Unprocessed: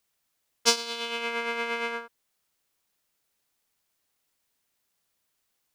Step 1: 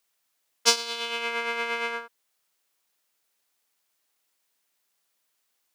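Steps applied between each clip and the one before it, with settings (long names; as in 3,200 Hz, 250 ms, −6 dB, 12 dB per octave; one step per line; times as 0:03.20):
high-pass filter 410 Hz 6 dB per octave
level +2 dB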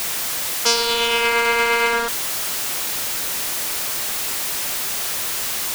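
converter with a step at zero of −25 dBFS
boost into a limiter +8 dB
level −1 dB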